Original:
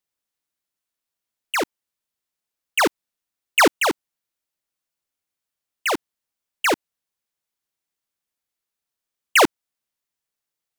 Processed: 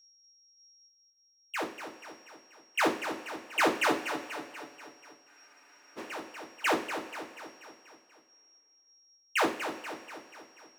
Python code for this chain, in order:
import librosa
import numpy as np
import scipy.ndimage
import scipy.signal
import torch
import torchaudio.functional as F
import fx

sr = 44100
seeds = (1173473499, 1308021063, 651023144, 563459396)

p1 = scipy.signal.sosfilt(scipy.signal.butter(2, 93.0, 'highpass', fs=sr, output='sos'), x)
p2 = fx.high_shelf(p1, sr, hz=5600.0, db=-7.5)
p3 = p2 + 10.0 ** (-46.0 / 20.0) * np.sin(2.0 * np.pi * 5600.0 * np.arange(len(p2)) / sr)
p4 = fx.tremolo_random(p3, sr, seeds[0], hz=3.5, depth_pct=55)
p5 = p4 + fx.echo_feedback(p4, sr, ms=242, feedback_pct=55, wet_db=-9, dry=0)
p6 = fx.rev_double_slope(p5, sr, seeds[1], early_s=0.33, late_s=2.5, knee_db=-18, drr_db=-0.5)
p7 = fx.spec_freeze(p6, sr, seeds[2], at_s=5.3, hold_s=0.68)
y = F.gain(torch.from_numpy(p7), -9.0).numpy()